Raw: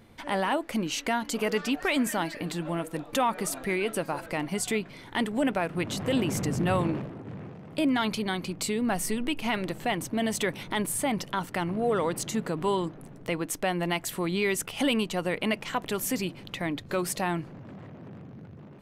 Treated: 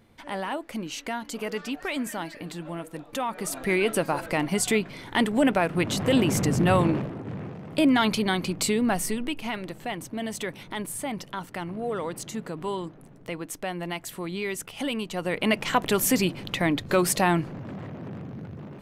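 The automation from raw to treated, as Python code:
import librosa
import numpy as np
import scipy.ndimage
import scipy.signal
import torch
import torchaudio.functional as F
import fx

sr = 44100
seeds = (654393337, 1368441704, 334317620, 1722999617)

y = fx.gain(x, sr, db=fx.line((3.27, -4.0), (3.75, 5.0), (8.71, 5.0), (9.61, -4.0), (15.0, -4.0), (15.65, 7.0)))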